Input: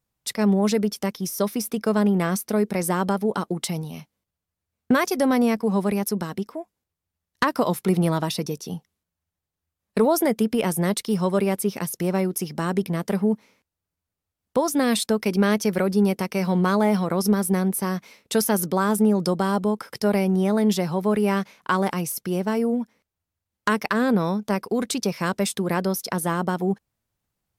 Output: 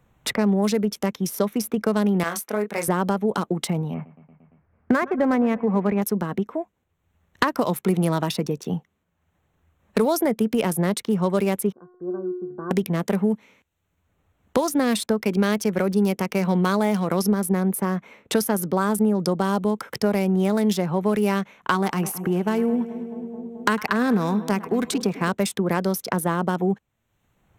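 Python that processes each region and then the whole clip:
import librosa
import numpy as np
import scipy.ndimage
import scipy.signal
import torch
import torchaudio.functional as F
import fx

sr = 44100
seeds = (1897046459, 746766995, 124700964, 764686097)

y = fx.chain(x, sr, fx.highpass(hz=1100.0, slope=6),
    fx.doubler(ms=24.0, db=-5), at=(2.23, 2.88))
y = fx.chain(y, sr, fx.lowpass(hz=2000.0, slope=24),
    fx.echo_feedback(ms=115, feedback_pct=57, wet_db=-20), at=(3.94, 6.02))
y = fx.chain(y, sr, fx.cheby_ripple(hz=1600.0, ripple_db=9),
    fx.comb_fb(f0_hz=360.0, decay_s=0.57, harmonics='all', damping=0.0, mix_pct=90), at=(11.72, 12.71))
y = fx.chain(y, sr, fx.notch(hz=560.0, q=5.9),
    fx.echo_split(split_hz=820.0, low_ms=216, high_ms=103, feedback_pct=52, wet_db=-15.0), at=(21.74, 25.29))
y = fx.wiener(y, sr, points=9)
y = fx.high_shelf(y, sr, hz=12000.0, db=4.5)
y = fx.band_squash(y, sr, depth_pct=70)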